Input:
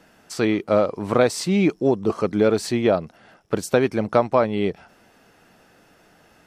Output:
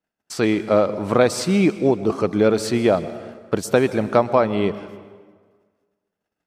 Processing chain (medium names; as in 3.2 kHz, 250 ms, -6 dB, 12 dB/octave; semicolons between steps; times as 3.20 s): gate -50 dBFS, range -35 dB; plate-style reverb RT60 1.6 s, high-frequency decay 0.75×, pre-delay 110 ms, DRR 14 dB; trim +1.5 dB